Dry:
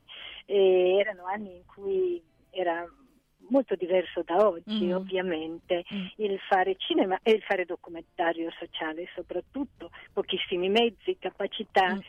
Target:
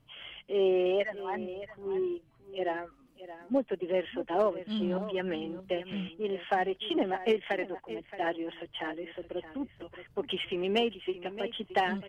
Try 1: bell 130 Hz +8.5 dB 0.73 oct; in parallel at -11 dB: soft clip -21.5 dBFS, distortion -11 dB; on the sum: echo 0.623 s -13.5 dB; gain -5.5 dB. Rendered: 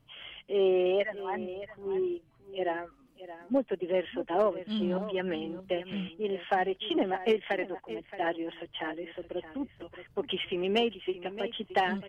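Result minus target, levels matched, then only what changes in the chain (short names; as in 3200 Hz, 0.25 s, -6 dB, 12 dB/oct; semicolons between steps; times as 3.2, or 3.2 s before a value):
soft clip: distortion -7 dB
change: soft clip -31.5 dBFS, distortion -4 dB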